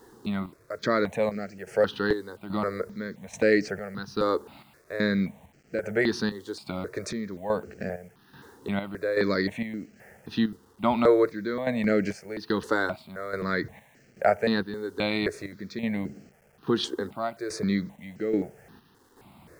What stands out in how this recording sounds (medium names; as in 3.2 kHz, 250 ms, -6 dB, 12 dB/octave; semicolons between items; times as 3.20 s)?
chopped level 1.2 Hz, depth 65%, duty 55%; a quantiser's noise floor 10-bit, dither none; notches that jump at a steady rate 3.8 Hz 640–3600 Hz